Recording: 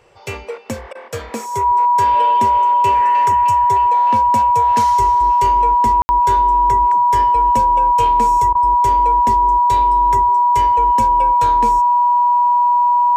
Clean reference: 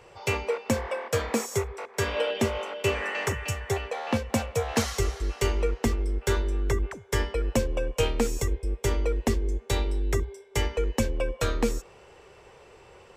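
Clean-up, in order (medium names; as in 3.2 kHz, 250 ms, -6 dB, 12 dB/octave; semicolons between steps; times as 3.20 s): band-stop 970 Hz, Q 30; room tone fill 6.02–6.09 s; interpolate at 0.93/8.53 s, 20 ms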